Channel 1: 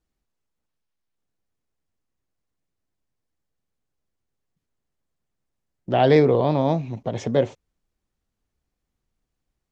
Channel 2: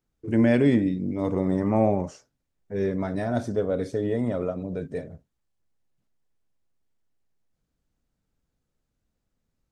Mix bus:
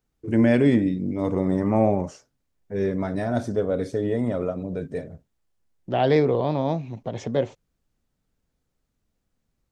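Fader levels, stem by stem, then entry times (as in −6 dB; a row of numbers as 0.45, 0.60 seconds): −3.5, +1.5 decibels; 0.00, 0.00 seconds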